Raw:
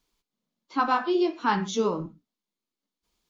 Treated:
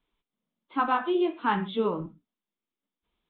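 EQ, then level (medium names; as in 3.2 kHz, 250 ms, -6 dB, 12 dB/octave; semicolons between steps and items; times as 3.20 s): steep low-pass 3.7 kHz 96 dB/octave; -1.5 dB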